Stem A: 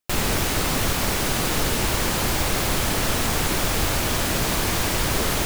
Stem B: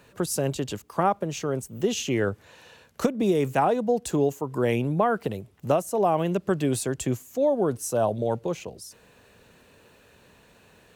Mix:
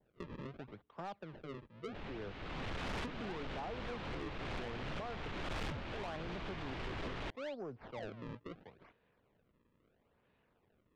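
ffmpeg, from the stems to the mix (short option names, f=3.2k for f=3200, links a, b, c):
-filter_complex "[0:a]adelay=1850,volume=-5dB,afade=t=in:st=2.75:d=0.34:silence=0.421697[a];[1:a]acrossover=split=200[b][c];[b]acompressor=threshold=-30dB:ratio=6[d];[d][c]amix=inputs=2:normalize=0,acrusher=samples=34:mix=1:aa=0.000001:lfo=1:lforange=54.4:lforate=0.75,adynamicequalizer=threshold=0.0141:dfrequency=1600:dqfactor=0.7:tfrequency=1600:tqfactor=0.7:attack=5:release=100:ratio=0.375:range=1.5:mode=cutabove:tftype=highshelf,volume=-18.5dB,asplit=2[e][f];[f]apad=whole_len=322017[g];[a][g]sidechaincompress=threshold=-51dB:ratio=16:attack=16:release=440[h];[h][e]amix=inputs=2:normalize=0,lowpass=f=3.4k:w=0.5412,lowpass=f=3.4k:w=1.3066,asoftclip=type=tanh:threshold=-37dB"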